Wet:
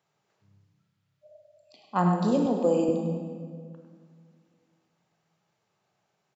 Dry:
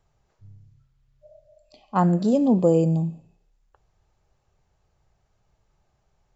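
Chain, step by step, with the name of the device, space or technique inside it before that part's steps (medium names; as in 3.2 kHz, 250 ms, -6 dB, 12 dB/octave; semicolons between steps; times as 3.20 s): PA in a hall (high-pass 150 Hz 24 dB/octave; peaking EQ 2.8 kHz +5.5 dB 2.3 oct; delay 101 ms -9.5 dB; reverberation RT60 2.0 s, pre-delay 25 ms, DRR 3.5 dB); 2.46–2.89 s: high-pass 280 Hz; trim -5.5 dB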